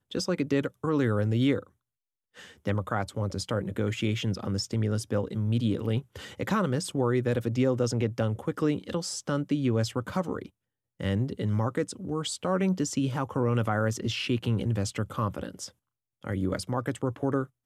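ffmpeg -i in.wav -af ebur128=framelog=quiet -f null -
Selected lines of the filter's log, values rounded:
Integrated loudness:
  I:         -29.2 LUFS
  Threshold: -39.4 LUFS
Loudness range:
  LRA:         2.8 LU
  Threshold: -49.5 LUFS
  LRA low:   -31.0 LUFS
  LRA high:  -28.2 LUFS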